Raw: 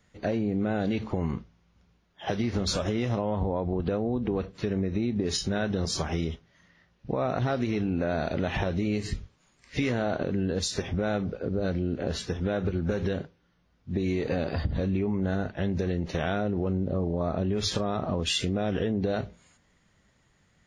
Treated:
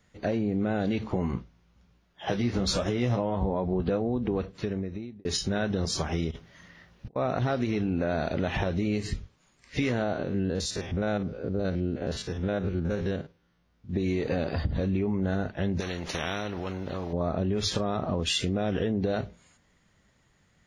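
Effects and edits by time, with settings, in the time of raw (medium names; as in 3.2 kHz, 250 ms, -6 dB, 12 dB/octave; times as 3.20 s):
1.07–4.02 s: doubling 16 ms -7.5 dB
4.53–5.25 s: fade out
6.31–7.16 s: compressor with a negative ratio -42 dBFS, ratio -0.5
10.03–13.93 s: spectrogram pixelated in time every 50 ms
15.80–17.13 s: spectrum-flattening compressor 2:1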